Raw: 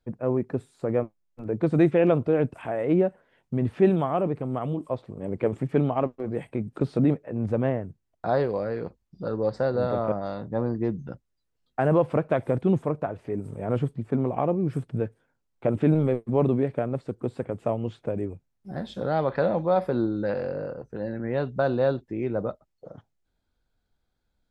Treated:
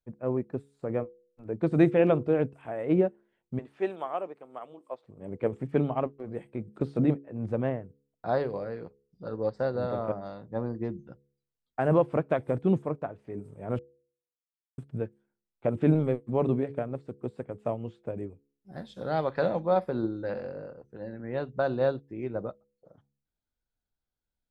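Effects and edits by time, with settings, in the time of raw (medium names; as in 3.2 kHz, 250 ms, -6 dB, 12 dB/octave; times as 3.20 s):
3.59–5.04 s: high-pass 510 Hz
13.79–14.78 s: mute
18.72–19.60 s: treble shelf 3.3 kHz +7 dB
whole clip: de-hum 70.02 Hz, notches 7; upward expansion 1.5:1, over -43 dBFS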